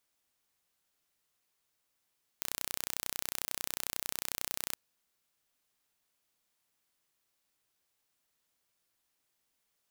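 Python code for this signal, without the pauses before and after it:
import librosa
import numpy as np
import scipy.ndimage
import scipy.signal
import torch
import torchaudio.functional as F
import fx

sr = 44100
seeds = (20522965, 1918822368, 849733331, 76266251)

y = 10.0 ** (-7.5 / 20.0) * (np.mod(np.arange(round(2.34 * sr)), round(sr / 31.1)) == 0)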